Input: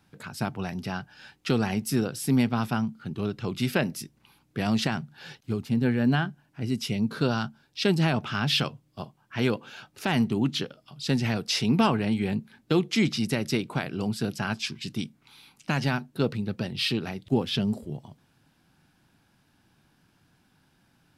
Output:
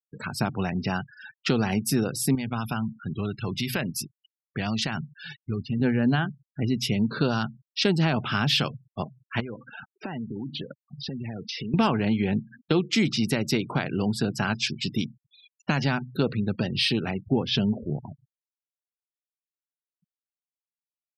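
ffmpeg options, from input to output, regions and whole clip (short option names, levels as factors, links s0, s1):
-filter_complex "[0:a]asettb=1/sr,asplit=3[s0][s1][s2];[s0]atrim=end=2.354[s3];[s1]atrim=start=2.35:end=5.8,asetpts=PTS-STARTPTS,afade=t=in:d=0.004:c=qsin,afade=t=out:st=3.446:d=0.004:c=qsin,equalizer=f=370:t=o:w=2.9:g=-6.5,acompressor=threshold=0.0316:ratio=2.5:attack=3.2:release=140:knee=1:detection=peak[s4];[s2]atrim=start=5.796[s5];[s3][s4]acrossfade=d=0.004:c1=hsin:c2=qsin[s6];[s6][s5]acrossfade=d=0.004:c1=qsin:c2=hsin,asettb=1/sr,asplit=3[s7][s8][s9];[s7]atrim=end=9.404[s10];[s8]atrim=start=9.4:end=11.74,asetpts=PTS-STARTPTS,afade=t=in:d=0.004:c=qsin,afade=t=out:st=2.336:d=0.004:c=qsin,agate=range=0.447:threshold=0.00447:ratio=16:release=100:detection=peak,lowpass=f=2200:p=1,acompressor=threshold=0.0158:ratio=16:attack=3.2:release=140:knee=1:detection=peak[s11];[s9]atrim=start=11.736[s12];[s10][s11]acrossfade=d=0.004:c1=hsin:c2=qsin[s13];[s13][s12]acrossfade=d=0.004:c1=qsin:c2=hsin,bandreject=f=62.58:t=h:w=4,bandreject=f=125.16:t=h:w=4,afftfilt=real='re*gte(hypot(re,im),0.00891)':imag='im*gte(hypot(re,im),0.00891)':win_size=1024:overlap=0.75,acompressor=threshold=0.0282:ratio=2,volume=2.24"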